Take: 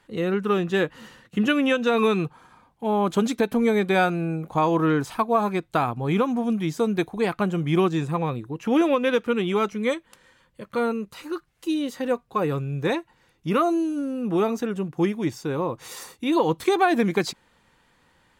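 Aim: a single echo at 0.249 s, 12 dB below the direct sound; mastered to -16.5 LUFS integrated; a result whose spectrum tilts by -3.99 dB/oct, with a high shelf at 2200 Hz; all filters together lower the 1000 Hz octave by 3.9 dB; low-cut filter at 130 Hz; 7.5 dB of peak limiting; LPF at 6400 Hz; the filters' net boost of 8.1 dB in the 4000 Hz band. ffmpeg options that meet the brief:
-af "highpass=130,lowpass=6.4k,equalizer=f=1k:t=o:g=-7.5,highshelf=f=2.2k:g=9,equalizer=f=4k:t=o:g=3,alimiter=limit=-14.5dB:level=0:latency=1,aecho=1:1:249:0.251,volume=9dB"

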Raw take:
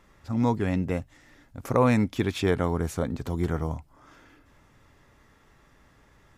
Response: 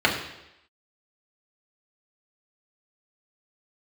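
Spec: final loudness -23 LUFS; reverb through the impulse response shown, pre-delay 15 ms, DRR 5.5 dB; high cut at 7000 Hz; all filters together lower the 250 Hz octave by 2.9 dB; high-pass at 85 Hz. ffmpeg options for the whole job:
-filter_complex "[0:a]highpass=85,lowpass=7k,equalizer=f=250:t=o:g=-3.5,asplit=2[a][b];[1:a]atrim=start_sample=2205,adelay=15[c];[b][c]afir=irnorm=-1:irlink=0,volume=-24dB[d];[a][d]amix=inputs=2:normalize=0,volume=5dB"

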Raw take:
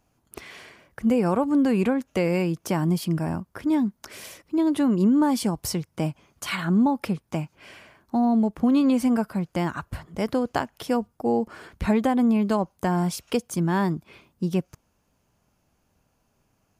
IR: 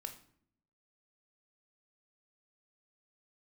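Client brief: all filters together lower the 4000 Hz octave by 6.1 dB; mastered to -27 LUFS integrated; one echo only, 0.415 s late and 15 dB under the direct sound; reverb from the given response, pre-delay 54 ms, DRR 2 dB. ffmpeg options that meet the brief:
-filter_complex "[0:a]equalizer=f=4k:t=o:g=-9,aecho=1:1:415:0.178,asplit=2[a][b];[1:a]atrim=start_sample=2205,adelay=54[c];[b][c]afir=irnorm=-1:irlink=0,volume=1dB[d];[a][d]amix=inputs=2:normalize=0,volume=-4dB"

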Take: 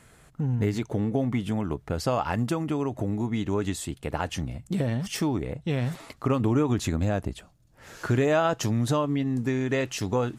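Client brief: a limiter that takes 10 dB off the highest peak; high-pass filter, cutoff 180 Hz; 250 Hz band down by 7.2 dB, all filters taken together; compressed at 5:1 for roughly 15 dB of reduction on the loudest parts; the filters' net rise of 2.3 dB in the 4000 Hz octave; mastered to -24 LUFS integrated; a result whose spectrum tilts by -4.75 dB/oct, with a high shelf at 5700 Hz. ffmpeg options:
-af "highpass=180,equalizer=f=250:t=o:g=-7.5,equalizer=f=4k:t=o:g=6.5,highshelf=f=5.7k:g=-9,acompressor=threshold=-37dB:ratio=5,volume=19.5dB,alimiter=limit=-12.5dB:level=0:latency=1"

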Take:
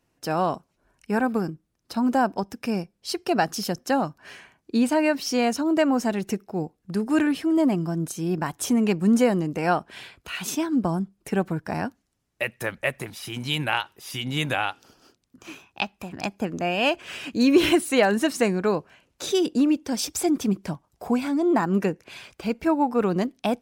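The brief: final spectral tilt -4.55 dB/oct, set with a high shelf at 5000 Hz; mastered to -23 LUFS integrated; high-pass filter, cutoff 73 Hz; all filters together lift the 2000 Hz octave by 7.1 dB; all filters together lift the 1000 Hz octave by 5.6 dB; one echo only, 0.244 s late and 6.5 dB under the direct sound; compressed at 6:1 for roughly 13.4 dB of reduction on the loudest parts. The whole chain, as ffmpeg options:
-af "highpass=73,equalizer=f=1k:t=o:g=6,equalizer=f=2k:t=o:g=8.5,highshelf=f=5k:g=-6.5,acompressor=threshold=-26dB:ratio=6,aecho=1:1:244:0.473,volume=7.5dB"

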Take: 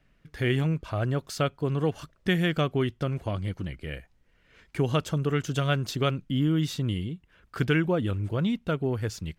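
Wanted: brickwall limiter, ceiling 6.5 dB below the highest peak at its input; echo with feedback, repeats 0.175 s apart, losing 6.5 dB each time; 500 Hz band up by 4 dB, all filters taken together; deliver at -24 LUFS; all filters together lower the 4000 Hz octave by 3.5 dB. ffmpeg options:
-af "equalizer=f=500:t=o:g=5,equalizer=f=4k:t=o:g=-5,alimiter=limit=-17dB:level=0:latency=1,aecho=1:1:175|350|525|700|875|1050:0.473|0.222|0.105|0.0491|0.0231|0.0109,volume=3.5dB"

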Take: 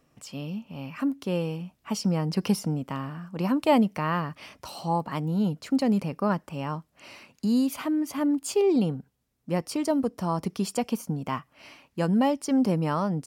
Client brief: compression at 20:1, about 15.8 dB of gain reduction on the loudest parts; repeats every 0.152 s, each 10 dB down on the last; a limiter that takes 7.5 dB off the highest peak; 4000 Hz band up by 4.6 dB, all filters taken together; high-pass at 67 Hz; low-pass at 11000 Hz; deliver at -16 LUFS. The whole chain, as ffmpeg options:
-af "highpass=67,lowpass=11k,equalizer=f=4k:t=o:g=6.5,acompressor=threshold=-32dB:ratio=20,alimiter=level_in=5.5dB:limit=-24dB:level=0:latency=1,volume=-5.5dB,aecho=1:1:152|304|456|608:0.316|0.101|0.0324|0.0104,volume=22.5dB"

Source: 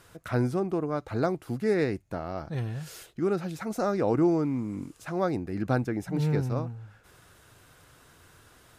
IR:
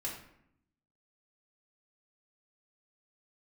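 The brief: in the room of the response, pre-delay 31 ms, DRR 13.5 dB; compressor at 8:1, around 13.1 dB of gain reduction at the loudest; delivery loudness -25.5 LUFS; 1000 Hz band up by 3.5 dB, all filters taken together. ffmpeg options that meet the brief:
-filter_complex "[0:a]equalizer=f=1k:t=o:g=5,acompressor=threshold=-33dB:ratio=8,asplit=2[a][b];[1:a]atrim=start_sample=2205,adelay=31[c];[b][c]afir=irnorm=-1:irlink=0,volume=-14.5dB[d];[a][d]amix=inputs=2:normalize=0,volume=12.5dB"

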